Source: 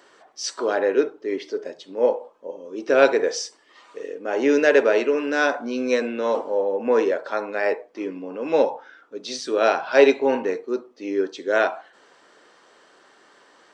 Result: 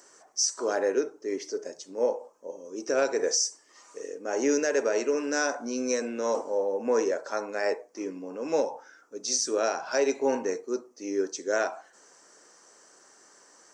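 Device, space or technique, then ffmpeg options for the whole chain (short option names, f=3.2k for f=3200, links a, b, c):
over-bright horn tweeter: -af "highshelf=f=4.7k:t=q:w=3:g=10,alimiter=limit=-10.5dB:level=0:latency=1:release=189,volume=-5dB"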